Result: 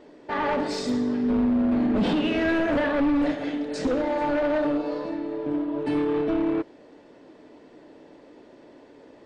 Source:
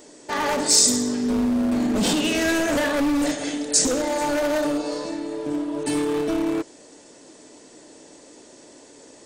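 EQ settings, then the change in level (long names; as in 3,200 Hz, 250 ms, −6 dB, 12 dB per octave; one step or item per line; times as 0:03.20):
high-frequency loss of the air 380 metres
0.0 dB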